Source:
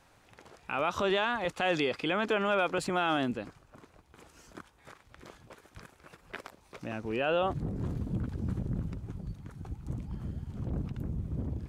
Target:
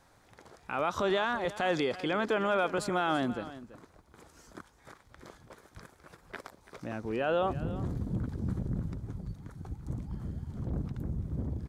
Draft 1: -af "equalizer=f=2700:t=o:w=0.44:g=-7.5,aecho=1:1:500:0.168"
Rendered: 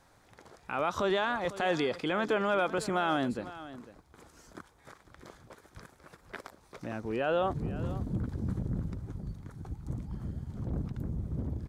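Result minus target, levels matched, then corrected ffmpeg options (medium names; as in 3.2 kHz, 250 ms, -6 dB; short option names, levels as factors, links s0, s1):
echo 166 ms late
-af "equalizer=f=2700:t=o:w=0.44:g=-7.5,aecho=1:1:334:0.168"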